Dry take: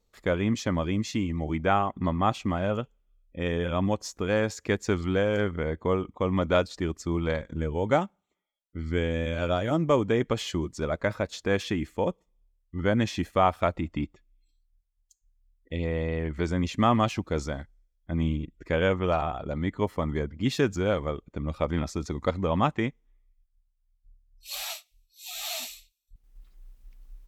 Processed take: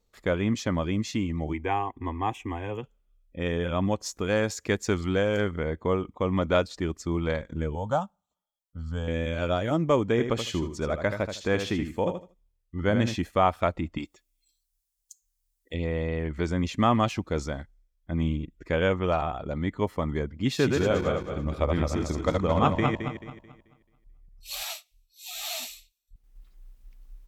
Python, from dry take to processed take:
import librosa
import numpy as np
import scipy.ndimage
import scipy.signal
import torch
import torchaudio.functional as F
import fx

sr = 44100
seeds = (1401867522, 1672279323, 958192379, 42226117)

y = fx.fixed_phaser(x, sr, hz=900.0, stages=8, at=(1.52, 2.82), fade=0.02)
y = fx.high_shelf(y, sr, hz=4800.0, db=6.0, at=(4.06, 5.59))
y = fx.fixed_phaser(y, sr, hz=870.0, stages=4, at=(7.75, 9.08))
y = fx.echo_feedback(y, sr, ms=78, feedback_pct=20, wet_db=-8, at=(10.17, 13.14), fade=0.02)
y = fx.bass_treble(y, sr, bass_db=-13, treble_db=14, at=(13.98, 15.74))
y = fx.reverse_delay_fb(y, sr, ms=109, feedback_pct=58, wet_db=-3, at=(20.47, 24.63))